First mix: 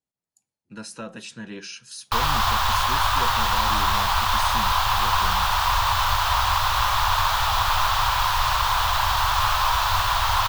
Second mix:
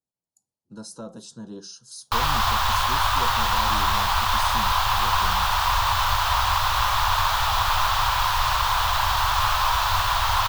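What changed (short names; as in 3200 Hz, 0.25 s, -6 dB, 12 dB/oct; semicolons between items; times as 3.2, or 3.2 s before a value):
speech: add Butterworth band-stop 2200 Hz, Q 0.71; reverb: off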